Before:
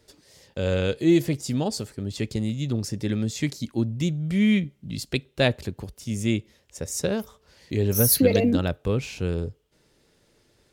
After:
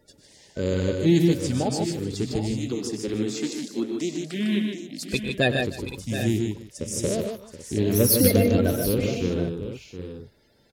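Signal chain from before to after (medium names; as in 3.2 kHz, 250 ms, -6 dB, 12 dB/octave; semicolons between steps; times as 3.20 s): coarse spectral quantiser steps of 30 dB; 2.59–5.11 s: high-pass 240 Hz 24 dB/octave; multi-tap echo 100/123/152/306/725/780 ms -14/-10.5/-5/-20/-11.5/-13 dB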